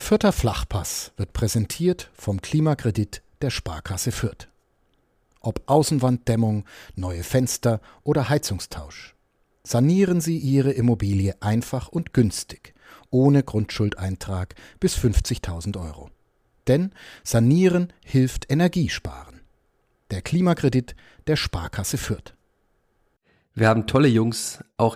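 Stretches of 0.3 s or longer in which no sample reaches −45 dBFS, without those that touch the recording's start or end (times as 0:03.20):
0:04.46–0:05.44
0:09.10–0:09.65
0:16.13–0:16.67
0:19.44–0:20.11
0:22.33–0:23.56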